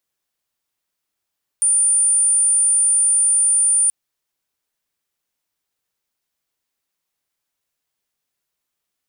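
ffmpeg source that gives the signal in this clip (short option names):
-f lavfi -i "sine=f=9250:d=2.28:r=44100,volume=5.56dB"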